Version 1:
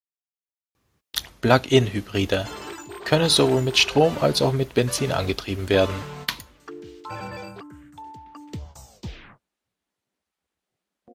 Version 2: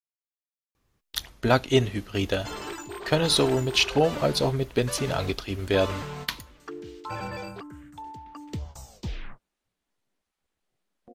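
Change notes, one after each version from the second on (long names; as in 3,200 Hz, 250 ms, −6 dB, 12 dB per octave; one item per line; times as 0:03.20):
speech −4.0 dB
master: remove high-pass filter 62 Hz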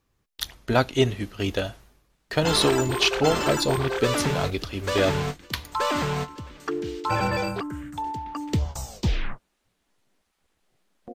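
speech: entry −0.75 s
background +10.0 dB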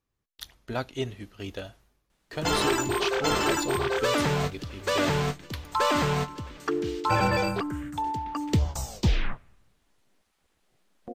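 speech −10.5 dB
reverb: on, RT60 1.1 s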